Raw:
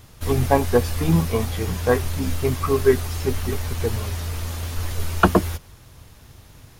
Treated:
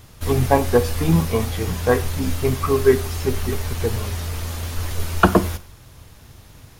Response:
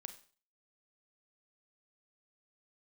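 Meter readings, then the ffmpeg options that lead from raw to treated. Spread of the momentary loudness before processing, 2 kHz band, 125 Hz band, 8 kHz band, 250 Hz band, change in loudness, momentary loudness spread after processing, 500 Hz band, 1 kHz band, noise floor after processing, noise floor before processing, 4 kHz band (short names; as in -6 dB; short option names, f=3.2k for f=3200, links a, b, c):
10 LU, +1.5 dB, +1.0 dB, +1.5 dB, +1.5 dB, +1.5 dB, 11 LU, +1.5 dB, +1.5 dB, -46 dBFS, -48 dBFS, +1.5 dB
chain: -filter_complex "[0:a]asplit=2[a][b];[1:a]atrim=start_sample=2205[c];[b][c]afir=irnorm=-1:irlink=0,volume=4.5dB[d];[a][d]amix=inputs=2:normalize=0,volume=-4dB"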